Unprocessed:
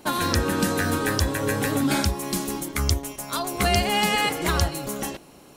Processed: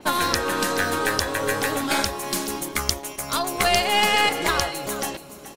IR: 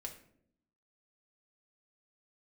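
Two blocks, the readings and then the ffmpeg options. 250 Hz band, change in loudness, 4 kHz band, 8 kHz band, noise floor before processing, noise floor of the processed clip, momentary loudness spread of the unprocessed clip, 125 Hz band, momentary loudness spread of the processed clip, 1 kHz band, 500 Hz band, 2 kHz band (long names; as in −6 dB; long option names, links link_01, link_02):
−4.0 dB, +1.5 dB, +3.5 dB, +2.0 dB, −49 dBFS, −42 dBFS, 9 LU, −9.0 dB, 9 LU, +3.5 dB, +1.5 dB, +4.0 dB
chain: -filter_complex "[0:a]acrossover=split=400[link_01][link_02];[link_01]acompressor=threshold=-38dB:ratio=5[link_03];[link_03][link_02]amix=inputs=2:normalize=0,aecho=1:1:426:0.2,aeval=exprs='0.562*(cos(1*acos(clip(val(0)/0.562,-1,1)))-cos(1*PI/2))+0.0794*(cos(4*acos(clip(val(0)/0.562,-1,1)))-cos(4*PI/2))':channel_layout=same,adynamicequalizer=threshold=0.0126:dfrequency=6200:dqfactor=0.7:tfrequency=6200:tqfactor=0.7:attack=5:release=100:ratio=0.375:range=2.5:mode=cutabove:tftype=highshelf,volume=3.5dB"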